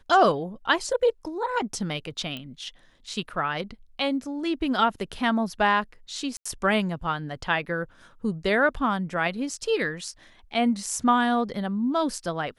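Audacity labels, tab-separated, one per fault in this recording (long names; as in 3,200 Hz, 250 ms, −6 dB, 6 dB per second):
2.370000	2.370000	click −21 dBFS
6.370000	6.460000	drop-out 85 ms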